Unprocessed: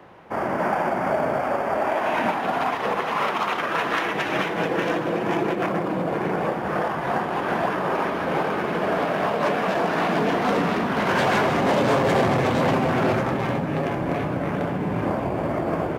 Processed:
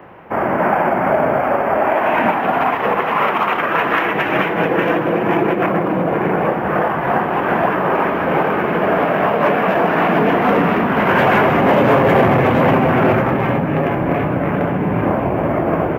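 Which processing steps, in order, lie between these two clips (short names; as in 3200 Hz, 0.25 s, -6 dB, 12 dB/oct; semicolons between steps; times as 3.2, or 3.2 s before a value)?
band shelf 6000 Hz -15.5 dB; gain +7.5 dB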